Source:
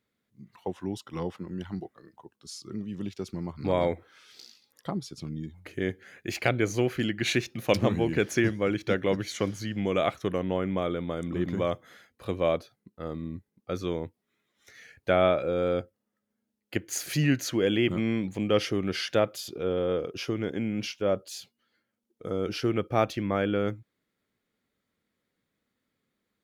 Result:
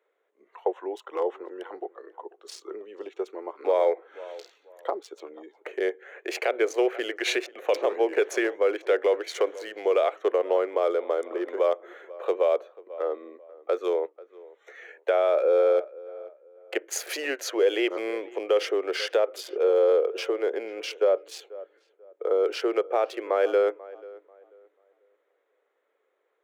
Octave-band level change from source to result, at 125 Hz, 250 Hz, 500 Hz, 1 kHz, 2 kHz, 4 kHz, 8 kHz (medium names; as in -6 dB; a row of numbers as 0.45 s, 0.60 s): under -40 dB, -6.5 dB, +5.5 dB, +2.5 dB, +0.5 dB, -0.5 dB, -0.5 dB